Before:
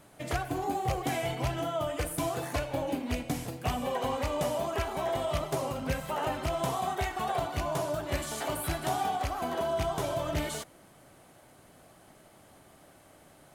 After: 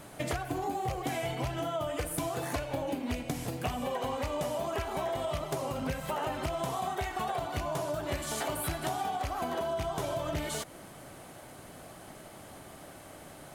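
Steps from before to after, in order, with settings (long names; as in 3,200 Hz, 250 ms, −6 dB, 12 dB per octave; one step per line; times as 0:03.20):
downward compressor, threshold −39 dBFS, peak gain reduction 13.5 dB
level +8 dB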